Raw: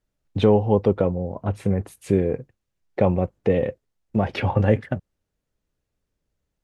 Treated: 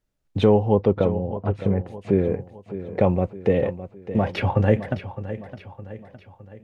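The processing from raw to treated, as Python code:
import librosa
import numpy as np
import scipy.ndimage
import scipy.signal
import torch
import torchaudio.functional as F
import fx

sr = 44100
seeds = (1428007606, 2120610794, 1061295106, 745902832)

y = fx.lowpass(x, sr, hz=fx.line((0.74, 4700.0), (2.23, 2600.0)), slope=12, at=(0.74, 2.23), fade=0.02)
y = fx.echo_feedback(y, sr, ms=612, feedback_pct=48, wet_db=-13.0)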